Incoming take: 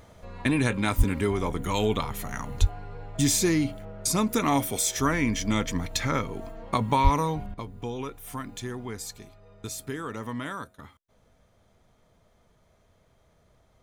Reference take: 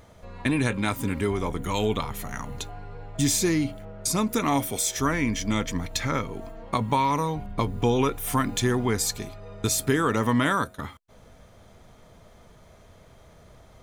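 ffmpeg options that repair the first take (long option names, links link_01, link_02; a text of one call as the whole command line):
ffmpeg -i in.wav -filter_complex "[0:a]asplit=3[link_01][link_02][link_03];[link_01]afade=type=out:start_time=0.97:duration=0.02[link_04];[link_02]highpass=frequency=140:width=0.5412,highpass=frequency=140:width=1.3066,afade=type=in:start_time=0.97:duration=0.02,afade=type=out:start_time=1.09:duration=0.02[link_05];[link_03]afade=type=in:start_time=1.09:duration=0.02[link_06];[link_04][link_05][link_06]amix=inputs=3:normalize=0,asplit=3[link_07][link_08][link_09];[link_07]afade=type=out:start_time=2.6:duration=0.02[link_10];[link_08]highpass=frequency=140:width=0.5412,highpass=frequency=140:width=1.3066,afade=type=in:start_time=2.6:duration=0.02,afade=type=out:start_time=2.72:duration=0.02[link_11];[link_09]afade=type=in:start_time=2.72:duration=0.02[link_12];[link_10][link_11][link_12]amix=inputs=3:normalize=0,asplit=3[link_13][link_14][link_15];[link_13]afade=type=out:start_time=7.03:duration=0.02[link_16];[link_14]highpass=frequency=140:width=0.5412,highpass=frequency=140:width=1.3066,afade=type=in:start_time=7.03:duration=0.02,afade=type=out:start_time=7.15:duration=0.02[link_17];[link_15]afade=type=in:start_time=7.15:duration=0.02[link_18];[link_16][link_17][link_18]amix=inputs=3:normalize=0,asetnsamples=nb_out_samples=441:pad=0,asendcmd='7.54 volume volume 11.5dB',volume=0dB" out.wav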